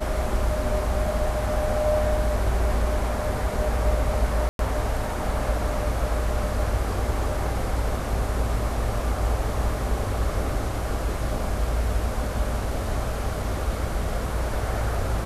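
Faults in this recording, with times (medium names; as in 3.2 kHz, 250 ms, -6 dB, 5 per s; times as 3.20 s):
4.49–4.59 s: dropout 102 ms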